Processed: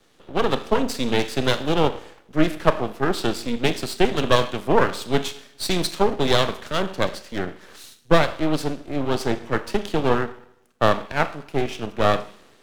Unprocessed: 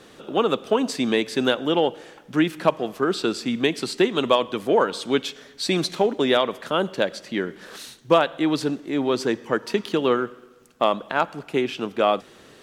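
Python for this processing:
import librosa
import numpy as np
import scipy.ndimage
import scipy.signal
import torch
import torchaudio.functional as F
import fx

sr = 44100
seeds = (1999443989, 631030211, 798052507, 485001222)

y = fx.rev_schroeder(x, sr, rt60_s=0.65, comb_ms=26, drr_db=11.0)
y = np.maximum(y, 0.0)
y = fx.band_widen(y, sr, depth_pct=40)
y = F.gain(torch.from_numpy(y), 4.0).numpy()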